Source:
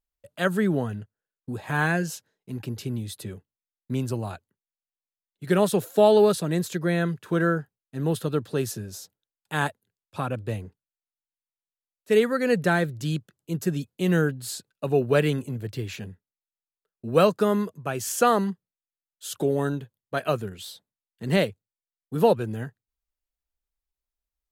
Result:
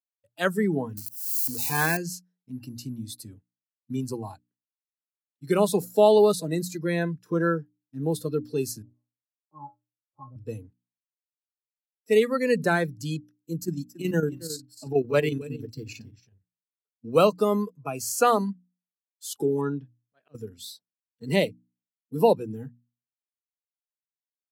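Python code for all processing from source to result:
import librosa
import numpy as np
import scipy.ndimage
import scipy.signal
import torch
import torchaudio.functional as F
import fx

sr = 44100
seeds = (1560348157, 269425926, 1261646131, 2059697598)

y = fx.chain(x, sr, fx.crossing_spikes(level_db=-21.0),
    fx.high_shelf(hz=9700.0, db=5.5),
    fx.auto_swell(attack_ms=308.0), at=(0.97, 1.97))
y = fx.chain(y, sr, fx.law_mismatch(coded='A'),
    fx.steep_lowpass(hz=1200.0, slope=96),
    fx.comb_fb(f0_hz=120.0, decay_s=0.23, harmonics='odd', damping=0.0, mix_pct=90), at=(8.82, 10.36))
y = fx.chain(y, sr, fx.peak_eq(hz=10000.0, db=-6.0, octaves=0.22),
    fx.echo_single(ms=278, db=-12.0),
    fx.chopper(hz=11.0, depth_pct=60, duty_pct=70), at=(13.59, 17.06))
y = fx.chain(y, sr, fx.savgol(points=15),
    fx.auto_swell(attack_ms=568.0), at=(19.61, 20.35))
y = fx.noise_reduce_blind(y, sr, reduce_db=18)
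y = scipy.signal.sosfilt(scipy.signal.butter(2, 150.0, 'highpass', fs=sr, output='sos'), y)
y = fx.hum_notches(y, sr, base_hz=60, count=5)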